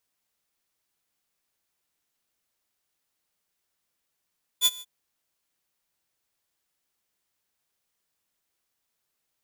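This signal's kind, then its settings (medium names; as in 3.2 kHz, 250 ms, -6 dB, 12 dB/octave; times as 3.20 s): ADSR saw 3.47 kHz, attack 48 ms, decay 39 ms, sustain -23 dB, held 0.20 s, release 40 ms -13 dBFS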